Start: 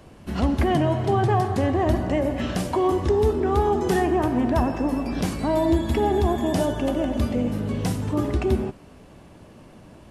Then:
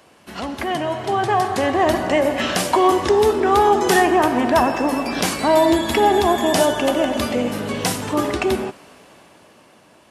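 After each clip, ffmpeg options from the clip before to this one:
-af "highpass=f=910:p=1,dynaudnorm=f=260:g=11:m=9dB,volume=4dB"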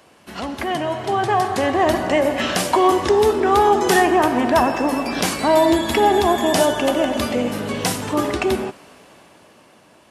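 -af anull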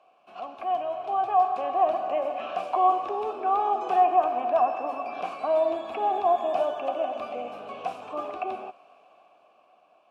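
-filter_complex "[0:a]asplit=3[a][b][c];[a]bandpass=f=730:t=q:w=8,volume=0dB[d];[b]bandpass=f=1.09k:t=q:w=8,volume=-6dB[e];[c]bandpass=f=2.44k:t=q:w=8,volume=-9dB[f];[d][e][f]amix=inputs=3:normalize=0,acrossover=split=2700[g][h];[h]acompressor=threshold=-52dB:ratio=4:attack=1:release=60[i];[g][i]amix=inputs=2:normalize=0"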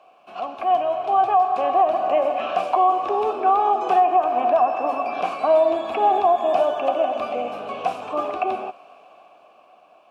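-af "alimiter=limit=-17dB:level=0:latency=1:release=232,volume=8dB"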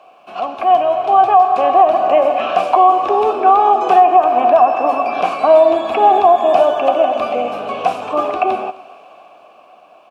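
-af "aecho=1:1:259:0.0668,volume=7.5dB"

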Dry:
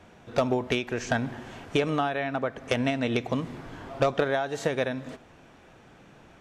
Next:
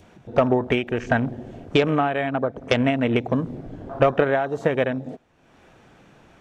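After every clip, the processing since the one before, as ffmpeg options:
-af "adynamicequalizer=threshold=0.0126:dfrequency=1300:dqfactor=0.74:tfrequency=1300:tqfactor=0.74:attack=5:release=100:ratio=0.375:range=2:mode=cutabove:tftype=bell,afwtdn=0.0141,acompressor=mode=upward:threshold=-47dB:ratio=2.5,volume=6.5dB"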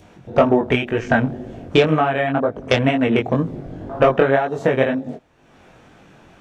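-af "flanger=delay=18.5:depth=4.9:speed=2,volume=7dB"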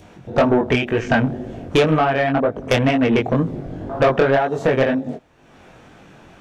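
-af "asoftclip=type=tanh:threshold=-11dB,volume=2.5dB"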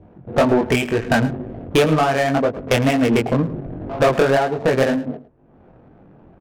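-af "adynamicsmooth=sensitivity=2.5:basefreq=570,aecho=1:1:108:0.15"

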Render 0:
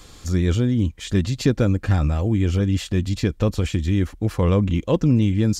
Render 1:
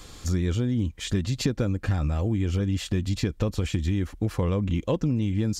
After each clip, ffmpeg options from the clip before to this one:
-af "acompressor=threshold=-21dB:ratio=6"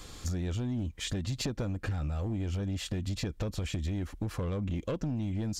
-af "aeval=exprs='0.266*(cos(1*acos(clip(val(0)/0.266,-1,1)))-cos(1*PI/2))+0.0266*(cos(5*acos(clip(val(0)/0.266,-1,1)))-cos(5*PI/2))':c=same,asoftclip=type=hard:threshold=-18dB,acompressor=threshold=-24dB:ratio=6,volume=-5.5dB"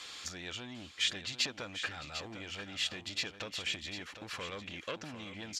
-af "bandpass=f=2.8k:t=q:w=1:csg=0,aecho=1:1:749|1498:0.316|0.0474,volume=8dB"

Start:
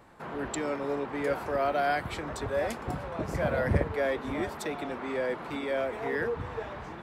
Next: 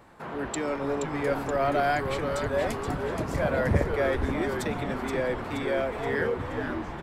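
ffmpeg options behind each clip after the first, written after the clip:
-filter_complex "[0:a]asplit=7[a][b][c][d][e][f][g];[b]adelay=475,afreqshift=-150,volume=-6dB[h];[c]adelay=950,afreqshift=-300,volume=-11.8dB[i];[d]adelay=1425,afreqshift=-450,volume=-17.7dB[j];[e]adelay=1900,afreqshift=-600,volume=-23.5dB[k];[f]adelay=2375,afreqshift=-750,volume=-29.4dB[l];[g]adelay=2850,afreqshift=-900,volume=-35.2dB[m];[a][h][i][j][k][l][m]amix=inputs=7:normalize=0,volume=2dB"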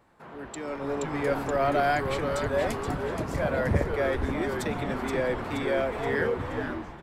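-af "dynaudnorm=f=550:g=3:m=10dB,volume=-9dB"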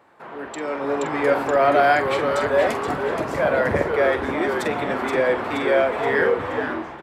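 -filter_complex "[0:a]highpass=76,bass=f=250:g=-11,treble=f=4k:g=-7,asplit=2[a][b];[b]adelay=46,volume=-10.5dB[c];[a][c]amix=inputs=2:normalize=0,volume=8.5dB"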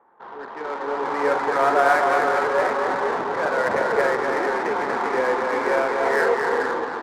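-af "highpass=290,equalizer=f=300:t=q:w=4:g=-7,equalizer=f=620:t=q:w=4:g=-8,equalizer=f=900:t=q:w=4:g=5,lowpass=f=2k:w=0.5412,lowpass=f=2k:w=1.3066,aecho=1:1:240|384|470.4|522.2|553.3:0.631|0.398|0.251|0.158|0.1,adynamicsmooth=sensitivity=4.5:basefreq=1.3k"

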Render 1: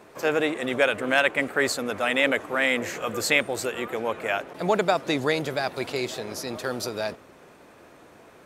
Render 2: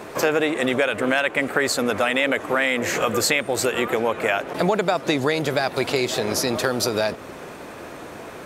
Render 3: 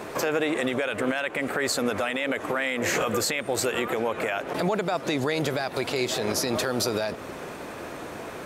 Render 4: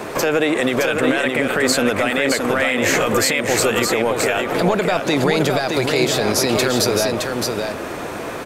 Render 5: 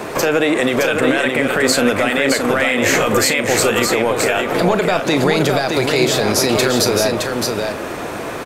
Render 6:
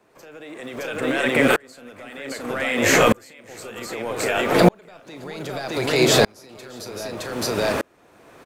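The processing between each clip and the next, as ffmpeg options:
-filter_complex "[0:a]asplit=2[a][b];[b]alimiter=limit=-13.5dB:level=0:latency=1,volume=-0.5dB[c];[a][c]amix=inputs=2:normalize=0,acompressor=threshold=-27dB:ratio=4,volume=8dB"
-af "alimiter=limit=-15.5dB:level=0:latency=1:release=112"
-filter_complex "[0:a]acrossover=split=770|1300[a][b][c];[b]aeval=exprs='clip(val(0),-1,0.00708)':c=same[d];[a][d][c]amix=inputs=3:normalize=0,aecho=1:1:617:0.596,volume=8dB"
-filter_complex "[0:a]asplit=2[a][b];[b]adelay=37,volume=-12.5dB[c];[a][c]amix=inputs=2:normalize=0,volume=2dB"
-filter_complex "[0:a]acrossover=split=250[a][b];[a]acrusher=bits=6:mix=0:aa=0.000001[c];[c][b]amix=inputs=2:normalize=0,aeval=exprs='val(0)*pow(10,-38*if(lt(mod(-0.64*n/s,1),2*abs(-0.64)/1000),1-mod(-0.64*n/s,1)/(2*abs(-0.64)/1000),(mod(-0.64*n/s,1)-2*abs(-0.64)/1000)/(1-2*abs(-0.64)/1000))/20)':c=same,volume=3.5dB"

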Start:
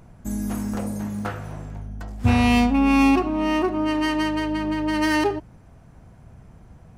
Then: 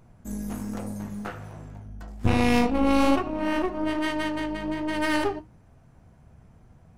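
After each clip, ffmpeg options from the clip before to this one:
-af "aeval=exprs='0.501*(cos(1*acos(clip(val(0)/0.501,-1,1)))-cos(1*PI/2))+0.158*(cos(4*acos(clip(val(0)/0.501,-1,1)))-cos(4*PI/2))+0.0178*(cos(6*acos(clip(val(0)/0.501,-1,1)))-cos(6*PI/2))':c=same,flanger=delay=7.7:depth=6.8:regen=-56:speed=1.2:shape=sinusoidal,volume=-2dB"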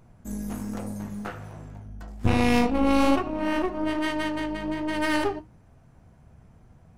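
-af anull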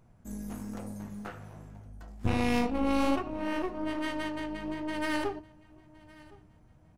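-af "aecho=1:1:1064|2128:0.0708|0.0219,volume=-6.5dB"

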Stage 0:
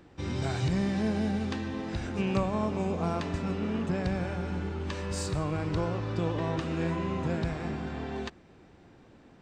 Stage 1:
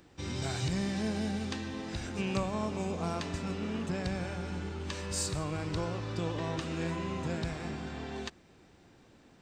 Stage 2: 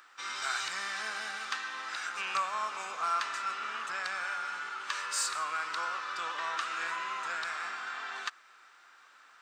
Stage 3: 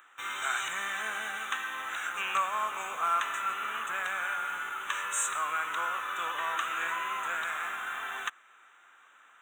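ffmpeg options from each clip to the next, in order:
-af "highshelf=f=3.5k:g=11.5,volume=-4.5dB"
-filter_complex "[0:a]highpass=f=1.3k:t=q:w=4.6,asplit=2[a][b];[b]asoftclip=type=tanh:threshold=-31dB,volume=-8dB[c];[a][c]amix=inputs=2:normalize=0"
-filter_complex "[0:a]asplit=2[a][b];[b]acrusher=bits=6:mix=0:aa=0.000001,volume=-8.5dB[c];[a][c]amix=inputs=2:normalize=0,asuperstop=centerf=4800:order=8:qfactor=1.9"

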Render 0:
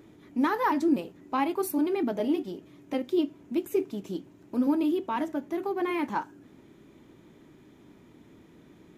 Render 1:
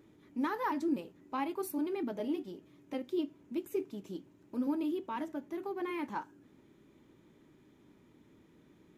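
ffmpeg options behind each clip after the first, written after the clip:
-af "bandreject=f=700:w=12,volume=-8dB"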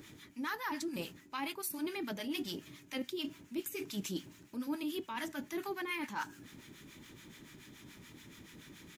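-filter_complex "[0:a]firequalizer=gain_entry='entry(140,0);entry(400,-7);entry(1700,7);entry(5000,12)':delay=0.05:min_phase=1,areverse,acompressor=threshold=-44dB:ratio=12,areverse,acrossover=split=890[a][b];[a]aeval=exprs='val(0)*(1-0.7/2+0.7/2*cos(2*PI*7*n/s))':c=same[c];[b]aeval=exprs='val(0)*(1-0.7/2-0.7/2*cos(2*PI*7*n/s))':c=same[d];[c][d]amix=inputs=2:normalize=0,volume=12dB"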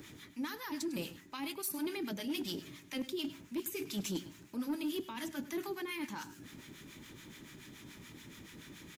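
-filter_complex "[0:a]acrossover=split=440|3000[a][b][c];[b]acompressor=threshold=-47dB:ratio=6[d];[a][d][c]amix=inputs=3:normalize=0,volume=33dB,asoftclip=hard,volume=-33dB,aecho=1:1:102:0.168,volume=2dB"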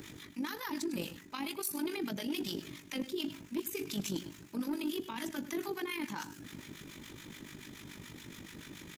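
-af "alimiter=level_in=9dB:limit=-24dB:level=0:latency=1:release=49,volume=-9dB,tremolo=f=49:d=0.621,volume=6dB"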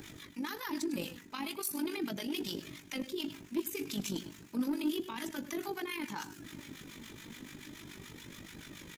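-af "flanger=delay=1.2:depth=3.5:regen=69:speed=0.35:shape=triangular,volume=4.5dB"

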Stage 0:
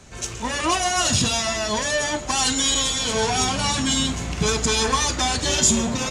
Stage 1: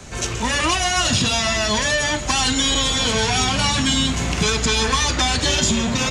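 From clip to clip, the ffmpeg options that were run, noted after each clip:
-filter_complex "[0:a]acrossover=split=190|1500|4600[a][b][c][d];[a]acompressor=threshold=-31dB:ratio=4[e];[b]acompressor=threshold=-33dB:ratio=4[f];[c]acompressor=threshold=-29dB:ratio=4[g];[d]acompressor=threshold=-38dB:ratio=4[h];[e][f][g][h]amix=inputs=4:normalize=0,volume=8.5dB"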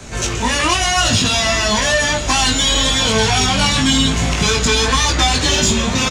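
-filter_complex "[0:a]flanger=delay=18:depth=2.7:speed=0.97,asplit=2[a][b];[b]asoftclip=type=tanh:threshold=-24.5dB,volume=-10.5dB[c];[a][c]amix=inputs=2:normalize=0,aecho=1:1:901:0.178,volume=5.5dB"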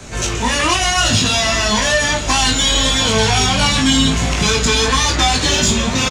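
-filter_complex "[0:a]asplit=2[a][b];[b]adelay=38,volume=-11dB[c];[a][c]amix=inputs=2:normalize=0"

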